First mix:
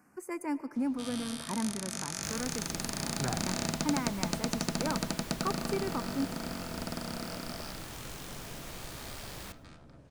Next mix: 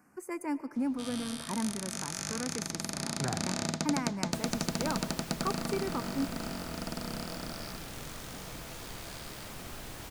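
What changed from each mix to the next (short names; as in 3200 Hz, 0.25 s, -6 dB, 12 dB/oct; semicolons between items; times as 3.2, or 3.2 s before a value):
second sound: entry +2.10 s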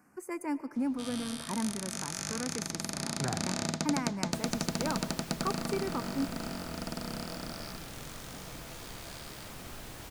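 second sound: send off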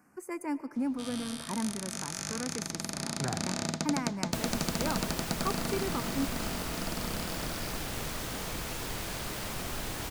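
second sound +9.0 dB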